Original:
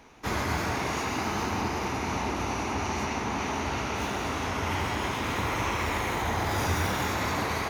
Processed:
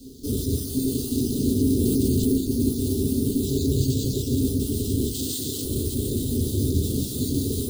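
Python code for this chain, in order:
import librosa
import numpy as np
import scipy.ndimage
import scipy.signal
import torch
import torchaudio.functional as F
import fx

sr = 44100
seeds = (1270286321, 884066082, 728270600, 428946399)

p1 = fx.spec_dropout(x, sr, seeds[0], share_pct=29)
p2 = fx.quant_dither(p1, sr, seeds[1], bits=8, dither='triangular')
p3 = p1 + F.gain(torch.from_numpy(p2), -2.0).numpy()
p4 = fx.graphic_eq(p3, sr, hz=(125, 250, 500, 1000, 2000, 4000, 8000), db=(9, -4, 6, -3, -8, 7, 4), at=(3.41, 4.33))
p5 = fx.tube_stage(p4, sr, drive_db=30.0, bias=0.6)
p6 = fx.tilt_eq(p5, sr, slope=3.0, at=(5.14, 5.65))
p7 = p6 + 10.0 ** (-10.5 / 20.0) * np.pad(p6, (int(179 * sr / 1000.0), 0))[:len(p6)]
p8 = fx.rev_fdn(p7, sr, rt60_s=0.44, lf_ratio=1.1, hf_ratio=0.3, size_ms=23.0, drr_db=-3.5)
p9 = np.repeat(scipy.signal.resample_poly(p8, 1, 4), 4)[:len(p8)]
p10 = scipy.signal.sosfilt(scipy.signal.cheby2(4, 40, [680.0, 2400.0], 'bandstop', fs=sr, output='sos'), p9)
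p11 = fx.env_flatten(p10, sr, amount_pct=70, at=(1.79, 2.33))
y = F.gain(torch.from_numpy(p11), 5.5).numpy()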